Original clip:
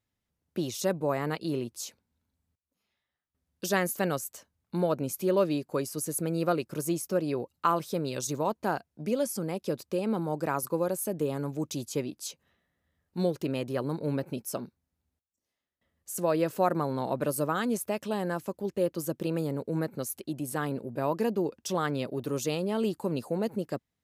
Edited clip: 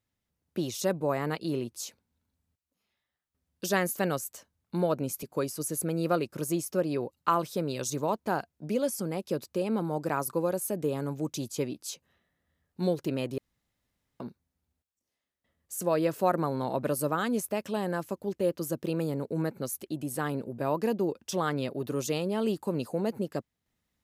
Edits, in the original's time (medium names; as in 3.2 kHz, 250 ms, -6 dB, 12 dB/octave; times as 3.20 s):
5.23–5.60 s: delete
13.75–14.57 s: room tone